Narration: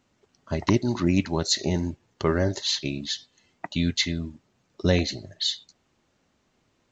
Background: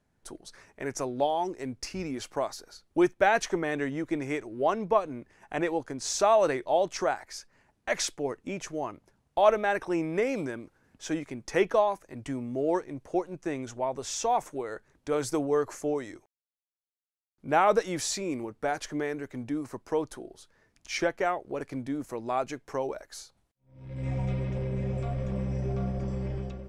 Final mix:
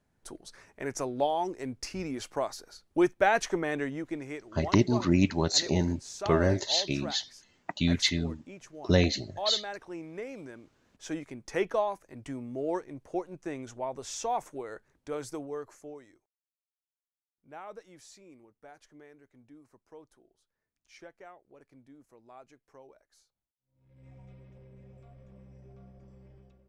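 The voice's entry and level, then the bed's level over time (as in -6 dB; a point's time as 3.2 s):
4.05 s, -1.5 dB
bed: 3.76 s -1 dB
4.68 s -12 dB
10.38 s -12 dB
11 s -4.5 dB
14.87 s -4.5 dB
16.56 s -22 dB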